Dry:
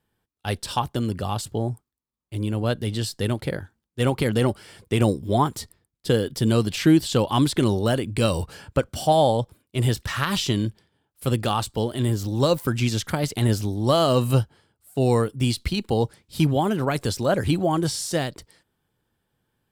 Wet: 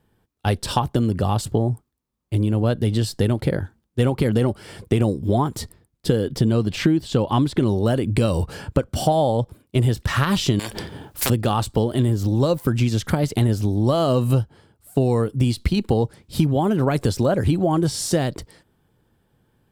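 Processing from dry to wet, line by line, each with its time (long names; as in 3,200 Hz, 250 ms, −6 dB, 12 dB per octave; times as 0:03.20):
0:06.26–0:07.68: parametric band 13,000 Hz −7 dB 1.6 octaves
0:10.59–0:11.30: every bin compressed towards the loudest bin 10 to 1
whole clip: tilt shelving filter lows +4 dB; downward compressor 6 to 1, threshold −24 dBFS; level +8 dB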